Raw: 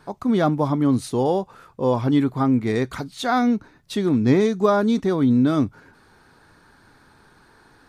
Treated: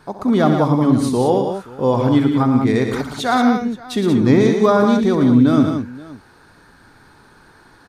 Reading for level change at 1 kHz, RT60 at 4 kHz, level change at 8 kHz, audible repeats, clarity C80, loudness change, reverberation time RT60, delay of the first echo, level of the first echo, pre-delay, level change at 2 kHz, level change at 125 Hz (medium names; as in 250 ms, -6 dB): +5.0 dB, no reverb, +5.0 dB, 4, no reverb, +5.0 dB, no reverb, 66 ms, -11.5 dB, no reverb, +5.0 dB, +5.0 dB